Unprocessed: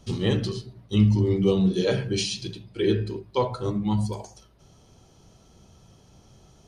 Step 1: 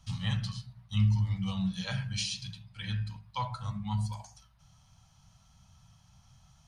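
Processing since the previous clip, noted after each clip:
Chebyshev band-stop filter 150–930 Hz, order 2
level −4.5 dB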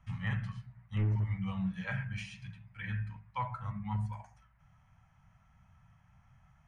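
hard clipping −23.5 dBFS, distortion −16 dB
high shelf with overshoot 2,900 Hz −13 dB, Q 3
level −3 dB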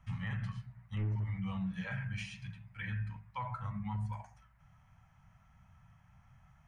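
brickwall limiter −31.5 dBFS, peak gain reduction 8 dB
level +1 dB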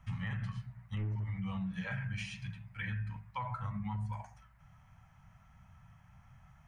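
downward compressor, threshold −37 dBFS, peak gain reduction 5 dB
level +3 dB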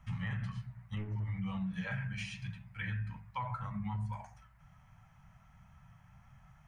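flanger 1.9 Hz, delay 4.6 ms, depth 2.5 ms, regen −70%
level +4.5 dB

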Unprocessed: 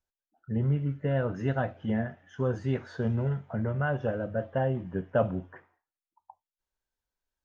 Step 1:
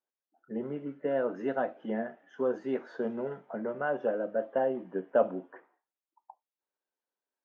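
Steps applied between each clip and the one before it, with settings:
Bessel high-pass filter 440 Hz, order 6
spectral tilt −4 dB per octave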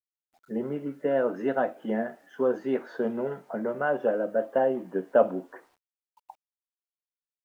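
bit reduction 12 bits
level +4.5 dB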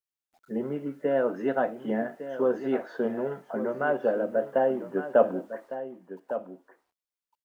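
single-tap delay 1,156 ms −11.5 dB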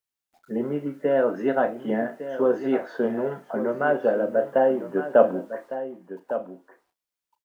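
double-tracking delay 34 ms −11.5 dB
level +3.5 dB

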